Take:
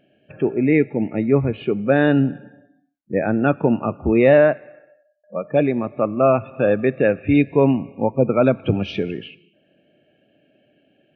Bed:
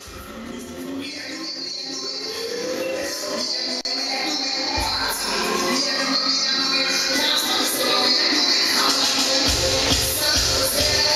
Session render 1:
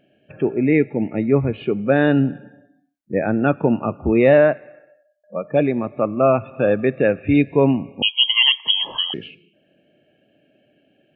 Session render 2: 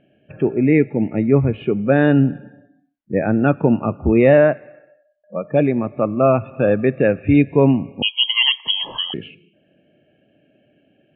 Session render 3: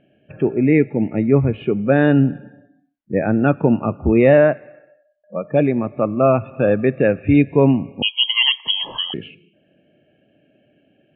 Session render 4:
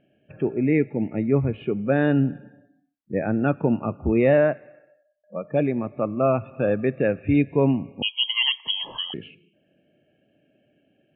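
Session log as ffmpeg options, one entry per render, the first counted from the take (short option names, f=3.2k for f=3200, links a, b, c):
-filter_complex "[0:a]asettb=1/sr,asplit=3[a][b][c];[a]atrim=end=8.024[d];[b]atrim=start=8.02:end=9.14,asetpts=PTS-STARTPTS,afade=t=in:d=0.004:c=qsin,afade=t=out:st=1.116:d=0.004:c=qsin,lowpass=f=2.9k:t=q:w=0.5098,lowpass=f=2.9k:t=q:w=0.6013,lowpass=f=2.9k:t=q:w=0.9,lowpass=f=2.9k:t=q:w=2.563,afreqshift=-3400[e];[c]atrim=start=9.136[f];[d][e]acrossfade=d=0.004:c1=hsin:c2=qsin[g];[g][f]acrossfade=d=0.004:c1=qsin:c2=hsin"
-af "lowpass=f=3.4k:w=0.5412,lowpass=f=3.4k:w=1.3066,lowshelf=f=210:g=6"
-af anull
-af "volume=-6dB"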